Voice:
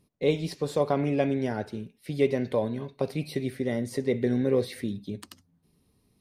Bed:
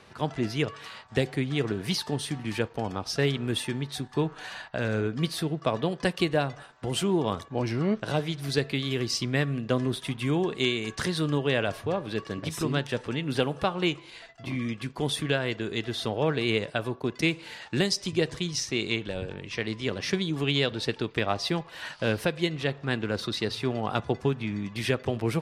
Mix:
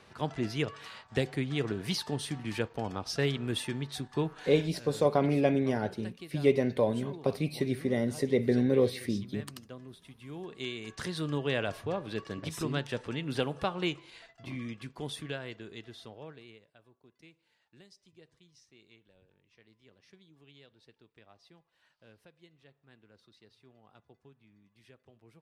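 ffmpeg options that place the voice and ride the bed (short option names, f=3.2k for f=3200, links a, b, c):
-filter_complex "[0:a]adelay=4250,volume=-0.5dB[a];[1:a]volume=11.5dB,afade=t=out:st=4.31:d=0.46:silence=0.149624,afade=t=in:st=10.22:d=1.27:silence=0.16788,afade=t=out:st=13.76:d=2.84:silence=0.0446684[b];[a][b]amix=inputs=2:normalize=0"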